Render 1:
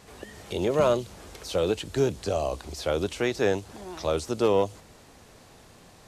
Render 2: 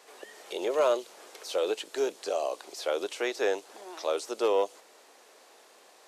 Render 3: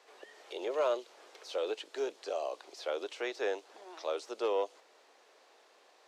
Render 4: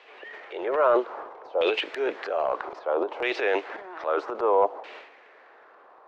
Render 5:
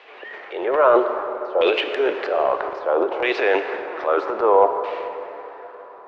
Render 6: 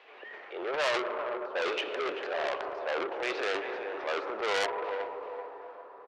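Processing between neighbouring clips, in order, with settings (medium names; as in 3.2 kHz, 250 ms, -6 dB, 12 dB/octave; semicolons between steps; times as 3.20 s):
high-pass 380 Hz 24 dB/octave; trim -2 dB
three-band isolator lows -21 dB, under 230 Hz, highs -13 dB, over 6.1 kHz; trim -5.5 dB
LFO low-pass saw down 0.62 Hz 820–2800 Hz; transient shaper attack -3 dB, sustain +11 dB; trim +7.5 dB
distance through air 74 m; plate-style reverb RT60 3.7 s, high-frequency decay 0.55×, DRR 7.5 dB; trim +6 dB
feedback delay 387 ms, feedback 36%, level -12 dB; transformer saturation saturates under 3.5 kHz; trim -9 dB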